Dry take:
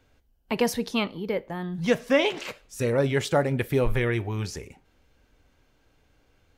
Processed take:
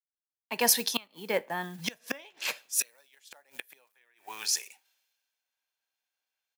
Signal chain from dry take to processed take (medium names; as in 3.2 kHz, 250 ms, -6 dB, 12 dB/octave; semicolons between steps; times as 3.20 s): fade-in on the opening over 1.09 s; peaking EQ 7.8 kHz -3 dB 0.44 oct; comb 1.2 ms, depth 30%; short-mantissa float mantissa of 4-bit; inverted gate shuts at -17 dBFS, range -27 dB; high-pass 190 Hz 12 dB/octave, from 2.80 s 610 Hz; tilt EQ +3.5 dB/octave; three bands expanded up and down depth 70%